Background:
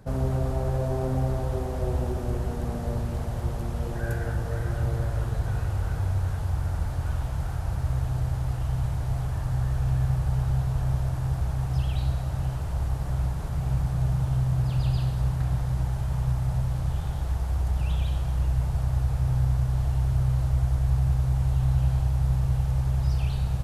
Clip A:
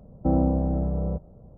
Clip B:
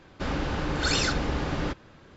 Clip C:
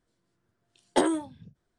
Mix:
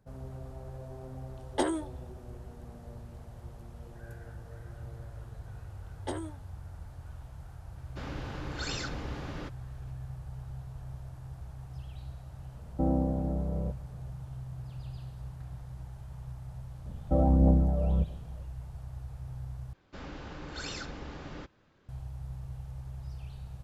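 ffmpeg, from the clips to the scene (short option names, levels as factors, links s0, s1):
-filter_complex "[3:a]asplit=2[s0][s1];[2:a]asplit=2[s2][s3];[1:a]asplit=2[s4][s5];[0:a]volume=0.141[s6];[s5]aphaser=in_gain=1:out_gain=1:delay=1.8:decay=0.58:speed=1.6:type=triangular[s7];[s6]asplit=2[s8][s9];[s8]atrim=end=19.734[s10];[s3]atrim=end=2.16,asetpts=PTS-STARTPTS,volume=0.2[s11];[s9]atrim=start=21.886[s12];[s0]atrim=end=1.78,asetpts=PTS-STARTPTS,volume=0.531,afade=t=in:d=0.004:c=hsin,afade=t=out:st=1.776:d=0.004:c=hsin,adelay=620[s13];[s1]atrim=end=1.78,asetpts=PTS-STARTPTS,volume=0.211,afade=t=in:d=0.004:c=hsin,afade=t=out:st=1.776:d=0.004:c=hsin,adelay=5110[s14];[s2]atrim=end=2.16,asetpts=PTS-STARTPTS,volume=0.282,afade=t=in:d=0.004:c=hsin,afade=t=out:st=2.156:d=0.004:c=hsin,adelay=7760[s15];[s4]atrim=end=1.57,asetpts=PTS-STARTPTS,volume=0.501,afade=t=in:d=0.004:c=hsin,afade=t=out:st=1.566:d=0.004:c=hsin,adelay=12540[s16];[s7]atrim=end=1.57,asetpts=PTS-STARTPTS,volume=0.668,afade=t=in:d=0.004:c=hsin,afade=t=out:st=1.566:d=0.004:c=hsin,adelay=16860[s17];[s10][s11]acrossfade=d=0.004:c1=hsin:c2=hsin[s18];[s18][s12]acrossfade=d=0.004:c1=hsin:c2=hsin[s19];[s19][s13][s14][s15][s16][s17]amix=inputs=6:normalize=0"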